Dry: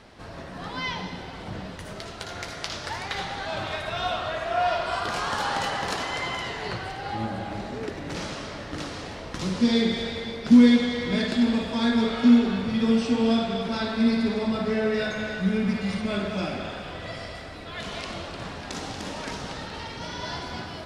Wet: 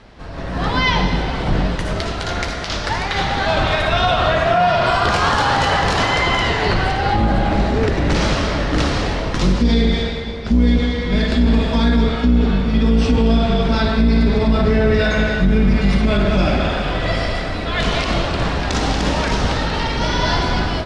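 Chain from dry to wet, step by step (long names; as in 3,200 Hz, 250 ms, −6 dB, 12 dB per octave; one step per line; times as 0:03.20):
sub-octave generator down 2 octaves, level +3 dB
automatic gain control gain up to 11.5 dB
high-frequency loss of the air 55 metres
boost into a limiter +10 dB
level −6 dB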